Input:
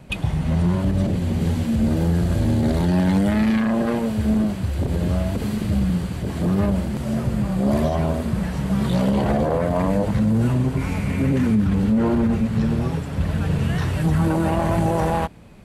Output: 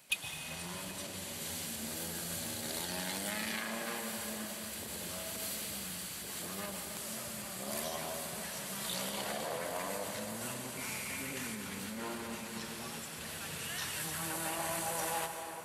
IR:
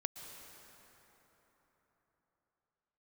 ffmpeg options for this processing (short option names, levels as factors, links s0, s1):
-filter_complex "[0:a]aderivative[s0];[1:a]atrim=start_sample=2205[s1];[s0][s1]afir=irnorm=-1:irlink=0,volume=1.78"